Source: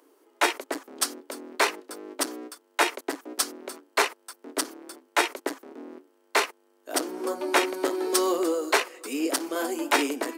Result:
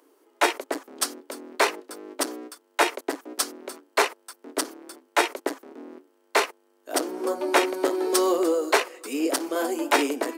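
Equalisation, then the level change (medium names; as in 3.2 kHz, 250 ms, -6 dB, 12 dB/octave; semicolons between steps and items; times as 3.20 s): dynamic bell 550 Hz, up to +4 dB, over -37 dBFS, Q 0.89; 0.0 dB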